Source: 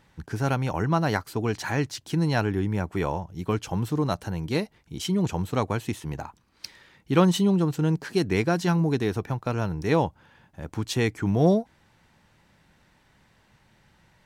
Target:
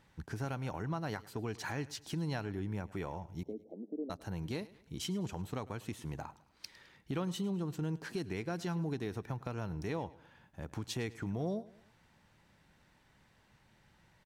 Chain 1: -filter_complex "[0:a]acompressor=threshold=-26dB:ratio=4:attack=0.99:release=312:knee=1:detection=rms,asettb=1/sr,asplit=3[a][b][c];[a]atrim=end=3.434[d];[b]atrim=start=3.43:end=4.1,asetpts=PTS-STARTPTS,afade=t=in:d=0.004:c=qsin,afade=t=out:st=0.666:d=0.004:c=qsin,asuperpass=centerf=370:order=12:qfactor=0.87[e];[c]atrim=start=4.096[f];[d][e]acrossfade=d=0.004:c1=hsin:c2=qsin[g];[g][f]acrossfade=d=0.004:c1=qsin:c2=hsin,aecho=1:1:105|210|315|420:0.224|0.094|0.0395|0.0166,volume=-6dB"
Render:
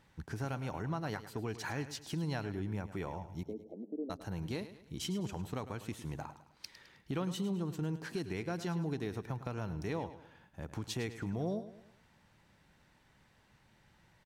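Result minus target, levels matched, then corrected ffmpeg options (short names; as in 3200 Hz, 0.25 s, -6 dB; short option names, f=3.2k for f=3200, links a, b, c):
echo-to-direct +6.5 dB
-filter_complex "[0:a]acompressor=threshold=-26dB:ratio=4:attack=0.99:release=312:knee=1:detection=rms,asettb=1/sr,asplit=3[a][b][c];[a]atrim=end=3.434[d];[b]atrim=start=3.43:end=4.1,asetpts=PTS-STARTPTS,afade=t=in:d=0.004:c=qsin,afade=t=out:st=0.666:d=0.004:c=qsin,asuperpass=centerf=370:order=12:qfactor=0.87[e];[c]atrim=start=4.096[f];[d][e]acrossfade=d=0.004:c1=hsin:c2=qsin[g];[g][f]acrossfade=d=0.004:c1=qsin:c2=hsin,aecho=1:1:105|210|315:0.106|0.0445|0.0187,volume=-6dB"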